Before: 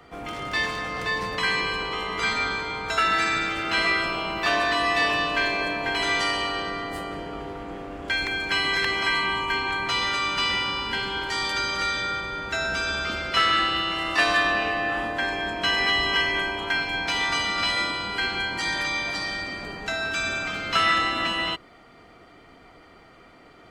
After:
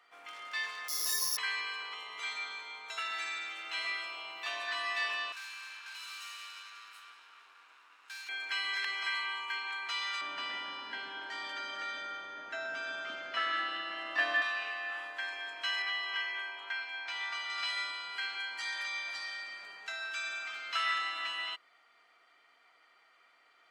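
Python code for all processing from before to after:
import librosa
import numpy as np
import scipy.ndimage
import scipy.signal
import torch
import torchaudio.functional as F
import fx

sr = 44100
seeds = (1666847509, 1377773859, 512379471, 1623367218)

y = fx.chain(x, sr, fx.tilt_eq(slope=-3.5),
    fx.resample_bad(factor=8, down='filtered', up='zero_stuff'),
    fx.ensemble(), at=(0.88, 1.37))
y = fx.chain(y, sr, fx.peak_eq(hz=1500.0, db=-8.0, octaves=0.67),
    fx.notch(hz=4900.0, q=7.2), at=(1.94, 4.68))
y = fx.chain(y, sr, fx.lower_of_two(delay_ms=0.75),
    fx.highpass(hz=1300.0, slope=6),
    fx.tube_stage(drive_db=31.0, bias=0.55), at=(5.32, 8.29))
y = fx.chain(y, sr, fx.tilt_eq(slope=-3.5),
    fx.small_body(hz=(270.0, 620.0, 1700.0, 3100.0), ring_ms=30, db=10),
    fx.echo_wet_highpass(ms=162, feedback_pct=69, hz=2000.0, wet_db=-14.0), at=(10.21, 14.42))
y = fx.chain(y, sr, fx.lowpass(hz=2900.0, slope=6),
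    fx.low_shelf(hz=180.0, db=-7.5), at=(15.82, 17.5))
y = scipy.signal.sosfilt(scipy.signal.butter(2, 1400.0, 'highpass', fs=sr, output='sos'), y)
y = fx.tilt_eq(y, sr, slope=-1.5)
y = F.gain(torch.from_numpy(y), -7.5).numpy()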